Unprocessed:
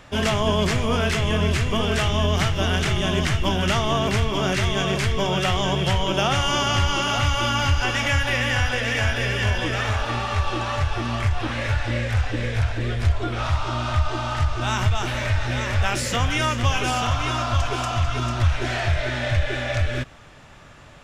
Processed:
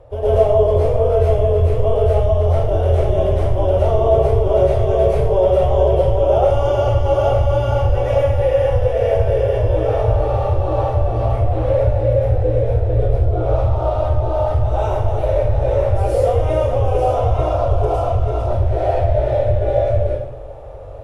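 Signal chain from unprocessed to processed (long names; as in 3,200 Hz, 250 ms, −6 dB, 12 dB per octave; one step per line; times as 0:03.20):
drawn EQ curve 110 Hz 0 dB, 200 Hz −26 dB, 500 Hz +7 dB, 1,600 Hz −24 dB, 7,100 Hz −24 dB, 11,000 Hz −3 dB
downward compressor, threshold −27 dBFS, peak gain reduction 13 dB
high-frequency loss of the air 69 metres
dense smooth reverb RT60 0.71 s, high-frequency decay 0.95×, pre-delay 95 ms, DRR −10 dB
level +5.5 dB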